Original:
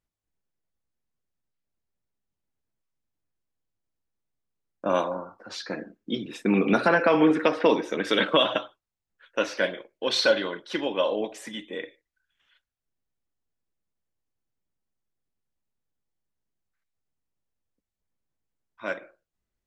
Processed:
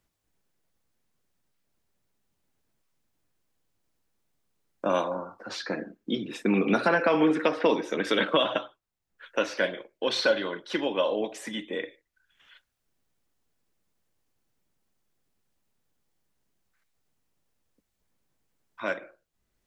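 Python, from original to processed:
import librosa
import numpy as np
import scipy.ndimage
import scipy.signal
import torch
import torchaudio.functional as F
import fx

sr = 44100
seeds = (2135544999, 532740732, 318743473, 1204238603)

y = fx.band_squash(x, sr, depth_pct=40)
y = F.gain(torch.from_numpy(y), -1.5).numpy()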